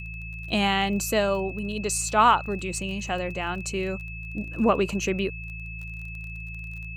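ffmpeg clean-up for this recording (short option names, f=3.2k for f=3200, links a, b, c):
-af "adeclick=t=4,bandreject=f=55.4:t=h:w=4,bandreject=f=110.8:t=h:w=4,bandreject=f=166.2:t=h:w=4,bandreject=f=2.6k:w=30"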